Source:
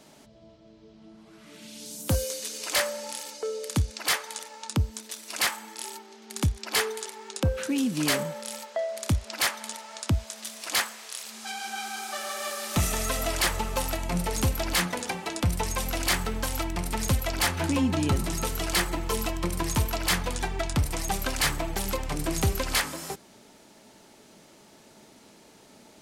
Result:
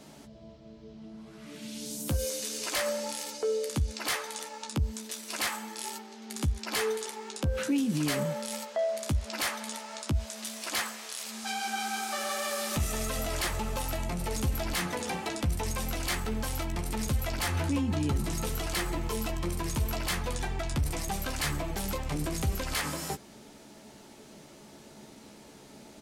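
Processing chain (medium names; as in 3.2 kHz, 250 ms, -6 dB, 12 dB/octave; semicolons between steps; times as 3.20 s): bass shelf 300 Hz +5.5 dB; peak limiter -23 dBFS, peak gain reduction 11.5 dB; doubling 14 ms -7 dB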